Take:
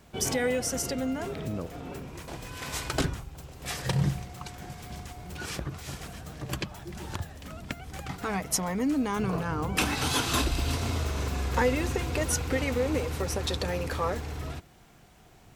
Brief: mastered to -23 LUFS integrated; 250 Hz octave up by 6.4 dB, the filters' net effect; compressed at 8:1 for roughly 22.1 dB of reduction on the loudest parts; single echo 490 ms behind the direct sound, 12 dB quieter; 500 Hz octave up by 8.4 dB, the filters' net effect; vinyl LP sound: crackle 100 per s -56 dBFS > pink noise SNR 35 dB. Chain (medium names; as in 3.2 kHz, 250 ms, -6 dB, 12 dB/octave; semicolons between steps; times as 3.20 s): peaking EQ 250 Hz +5.5 dB; peaking EQ 500 Hz +8 dB; compression 8:1, threshold -36 dBFS; delay 490 ms -12 dB; crackle 100 per s -56 dBFS; pink noise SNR 35 dB; trim +16.5 dB